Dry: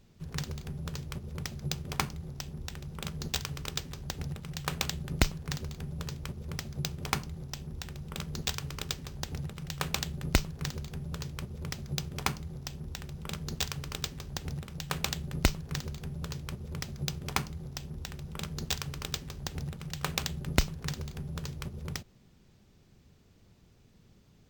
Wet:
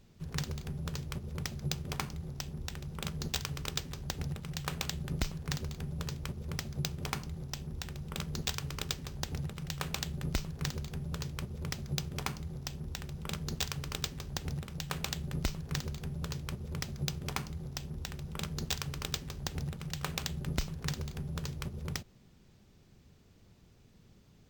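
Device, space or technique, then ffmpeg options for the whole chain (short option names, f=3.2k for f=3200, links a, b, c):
clipper into limiter: -af "asoftclip=type=hard:threshold=-9dB,alimiter=limit=-17dB:level=0:latency=1:release=136"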